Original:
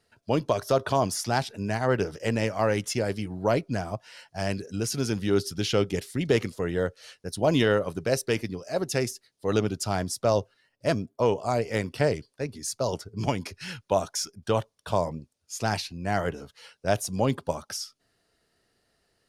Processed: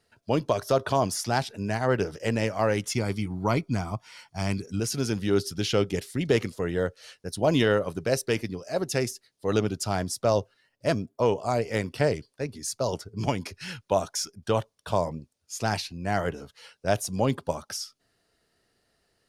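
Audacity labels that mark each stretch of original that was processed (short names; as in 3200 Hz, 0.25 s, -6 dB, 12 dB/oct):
2.920000	4.800000	comb 0.9 ms, depth 55%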